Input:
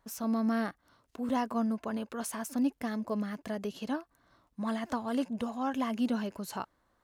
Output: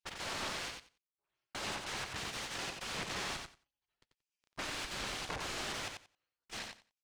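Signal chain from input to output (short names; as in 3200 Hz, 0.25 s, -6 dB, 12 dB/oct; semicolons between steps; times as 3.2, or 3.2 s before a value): rattling part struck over -37 dBFS, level -41 dBFS; spectral gate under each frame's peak -30 dB weak; 3.17–5.67 low shelf 82 Hz +9.5 dB; sample leveller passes 5; step gate "xxxxxx....xxxxxx" 97 bpm -60 dB; wrapped overs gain 40 dB; air absorption 97 m; feedback echo 90 ms, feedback 16%, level -5 dB; gain +9.5 dB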